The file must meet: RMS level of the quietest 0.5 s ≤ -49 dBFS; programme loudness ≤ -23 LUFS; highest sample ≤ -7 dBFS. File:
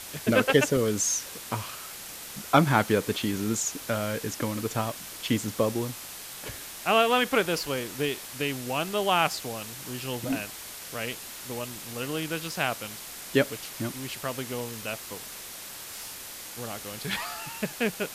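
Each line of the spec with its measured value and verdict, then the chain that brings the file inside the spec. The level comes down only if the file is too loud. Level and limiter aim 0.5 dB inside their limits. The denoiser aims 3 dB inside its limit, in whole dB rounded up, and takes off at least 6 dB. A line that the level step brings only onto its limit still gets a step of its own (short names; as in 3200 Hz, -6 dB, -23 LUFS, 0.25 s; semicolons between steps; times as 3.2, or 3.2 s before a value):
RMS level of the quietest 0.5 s -41 dBFS: fail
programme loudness -29.0 LUFS: OK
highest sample -6.0 dBFS: fail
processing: denoiser 11 dB, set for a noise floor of -41 dBFS; limiter -7.5 dBFS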